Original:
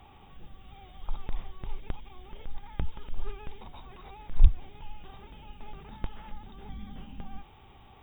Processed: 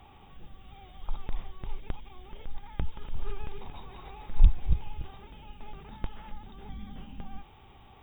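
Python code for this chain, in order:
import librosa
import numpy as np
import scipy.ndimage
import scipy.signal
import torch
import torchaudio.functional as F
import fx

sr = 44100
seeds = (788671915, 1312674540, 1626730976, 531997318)

y = fx.reverse_delay_fb(x, sr, ms=143, feedback_pct=46, wet_db=-5.5, at=(2.87, 5.09))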